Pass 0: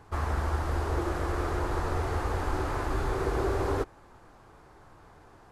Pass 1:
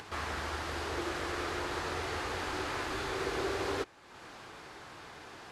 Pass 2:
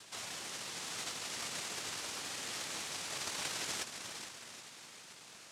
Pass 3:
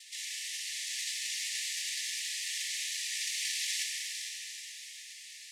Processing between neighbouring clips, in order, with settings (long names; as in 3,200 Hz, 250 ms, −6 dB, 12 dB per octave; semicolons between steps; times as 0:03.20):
meter weighting curve D; upward compression, threshold −34 dBFS; level −4.5 dB
feedback delay with all-pass diffusion 452 ms, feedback 42%, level −6.5 dB; cochlear-implant simulation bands 1; level −6.5 dB
linear-phase brick-wall high-pass 1,700 Hz; dense smooth reverb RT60 2.9 s, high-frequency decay 0.9×, DRR −1 dB; level +3 dB